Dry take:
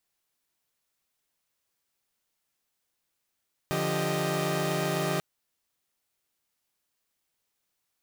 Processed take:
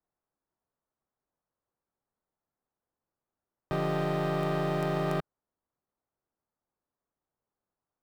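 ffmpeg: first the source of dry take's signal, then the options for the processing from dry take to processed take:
-f lavfi -i "aevalsrc='0.0335*((2*mod(146.83*t,1)-1)+(2*mod(174.61*t,1)-1)+(2*mod(392*t,1)-1)+(2*mod(622.25*t,1)-1))':d=1.49:s=44100"
-filter_complex "[0:a]lowpass=2.6k,acrossover=split=160|1400[a][b][c];[c]acrusher=bits=6:dc=4:mix=0:aa=0.000001[d];[a][b][d]amix=inputs=3:normalize=0"

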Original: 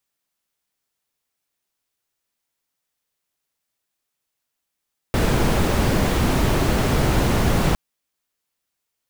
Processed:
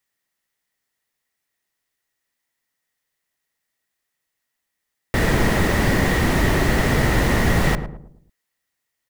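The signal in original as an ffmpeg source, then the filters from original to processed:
-f lavfi -i "anoisesrc=c=brown:a=0.589:d=2.61:r=44100:seed=1"
-filter_complex "[0:a]equalizer=f=1.9k:w=7.3:g=13.5,asplit=2[a][b];[b]adelay=109,lowpass=f=810:p=1,volume=-8dB,asplit=2[c][d];[d]adelay=109,lowpass=f=810:p=1,volume=0.43,asplit=2[e][f];[f]adelay=109,lowpass=f=810:p=1,volume=0.43,asplit=2[g][h];[h]adelay=109,lowpass=f=810:p=1,volume=0.43,asplit=2[i][j];[j]adelay=109,lowpass=f=810:p=1,volume=0.43[k];[c][e][g][i][k]amix=inputs=5:normalize=0[l];[a][l]amix=inputs=2:normalize=0"

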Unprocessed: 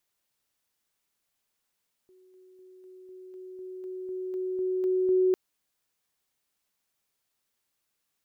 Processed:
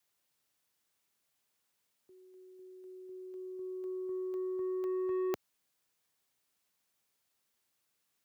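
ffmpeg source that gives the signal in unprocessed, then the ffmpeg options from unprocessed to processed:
-f lavfi -i "aevalsrc='pow(10,(-55.5+3*floor(t/0.25))/20)*sin(2*PI*371*t)':d=3.25:s=44100"
-filter_complex "[0:a]highpass=65,adynamicequalizer=threshold=0.0126:dfrequency=360:dqfactor=2.8:tfrequency=360:tqfactor=2.8:attack=5:release=100:ratio=0.375:range=3:mode=cutabove:tftype=bell,acrossover=split=110|600[a][b][c];[b]asoftclip=type=tanh:threshold=-33.5dB[d];[a][d][c]amix=inputs=3:normalize=0"

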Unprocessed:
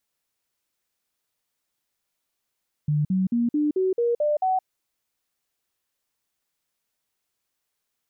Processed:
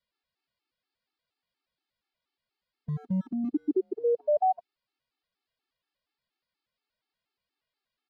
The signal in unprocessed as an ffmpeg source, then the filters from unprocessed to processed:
-f lavfi -i "aevalsrc='0.112*clip(min(mod(t,0.22),0.17-mod(t,0.22))/0.005,0,1)*sin(2*PI*149*pow(2,floor(t/0.22)/3)*mod(t,0.22))':d=1.76:s=44100"
-filter_complex "[0:a]aresample=11025,aresample=44100,acrossover=split=190|420[a][b][c];[a]asoftclip=type=hard:threshold=-37dB[d];[d][b][c]amix=inputs=3:normalize=0,afftfilt=real='re*gt(sin(2*PI*4.2*pts/sr)*(1-2*mod(floor(b*sr/1024/230),2)),0)':imag='im*gt(sin(2*PI*4.2*pts/sr)*(1-2*mod(floor(b*sr/1024/230),2)),0)':win_size=1024:overlap=0.75"

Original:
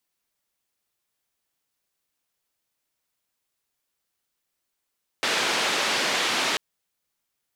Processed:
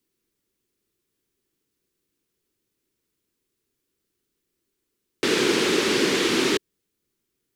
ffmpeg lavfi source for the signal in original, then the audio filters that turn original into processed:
-f lavfi -i "anoisesrc=c=white:d=1.34:r=44100:seed=1,highpass=f=260,lowpass=f=3900,volume=-12.2dB"
-af "lowshelf=f=510:t=q:w=3:g=9.5"

